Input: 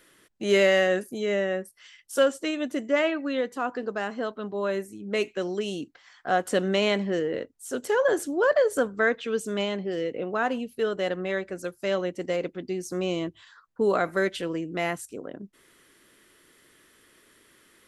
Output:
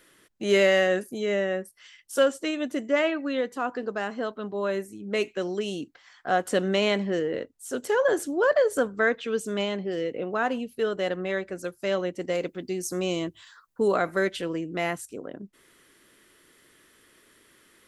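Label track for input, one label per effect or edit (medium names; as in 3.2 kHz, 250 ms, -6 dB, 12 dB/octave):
12.350000	13.880000	treble shelf 6.2 kHz +11.5 dB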